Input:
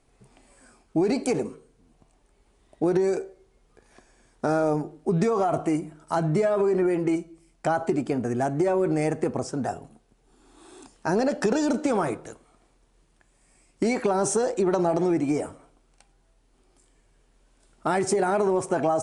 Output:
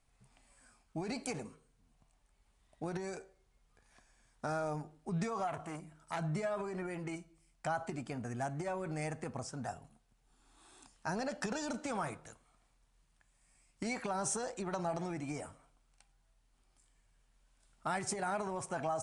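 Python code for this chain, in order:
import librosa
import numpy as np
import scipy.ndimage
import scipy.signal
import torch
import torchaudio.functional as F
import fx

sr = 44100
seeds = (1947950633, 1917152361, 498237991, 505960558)

y = fx.peak_eq(x, sr, hz=370.0, db=-13.0, octaves=1.3)
y = fx.transformer_sat(y, sr, knee_hz=1500.0, at=(5.47, 6.19))
y = F.gain(torch.from_numpy(y), -7.5).numpy()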